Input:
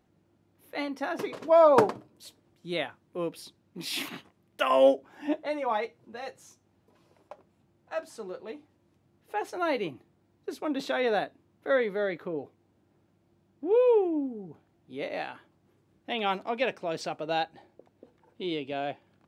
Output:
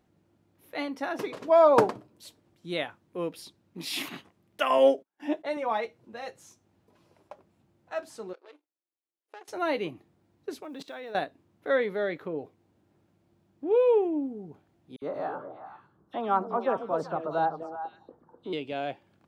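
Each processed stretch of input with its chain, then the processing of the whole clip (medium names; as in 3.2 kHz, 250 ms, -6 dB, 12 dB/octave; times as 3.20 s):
4.78–5.57 s: high-pass 160 Hz + gate -49 dBFS, range -38 dB
8.33–9.48 s: compression 4:1, threshold -38 dBFS + power-law waveshaper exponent 2 + brick-wall FIR band-pass 270–12000 Hz
10.62–11.15 s: block-companded coder 7-bit + level held to a coarse grid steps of 20 dB
14.96–18.53 s: resonant high shelf 1.7 kHz -11.5 dB, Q 3 + phase dispersion lows, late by 60 ms, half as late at 2.9 kHz + repeats whose band climbs or falls 127 ms, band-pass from 150 Hz, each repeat 1.4 oct, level -2 dB
whole clip: none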